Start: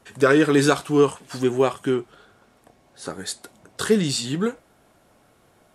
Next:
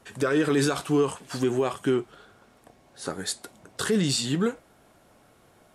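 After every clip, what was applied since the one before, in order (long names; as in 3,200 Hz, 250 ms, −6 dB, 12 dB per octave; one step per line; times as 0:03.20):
brickwall limiter −15 dBFS, peak gain reduction 10.5 dB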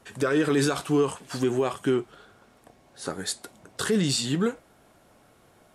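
no processing that can be heard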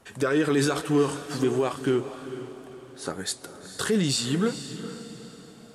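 feedback delay with all-pass diffusion 454 ms, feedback 43%, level −11.5 dB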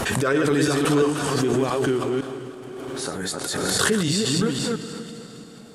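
delay that plays each chunk backwards 170 ms, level −2 dB
background raised ahead of every attack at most 22 dB per second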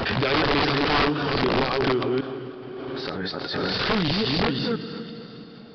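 wrap-around overflow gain 15 dB
downsampling to 11,025 Hz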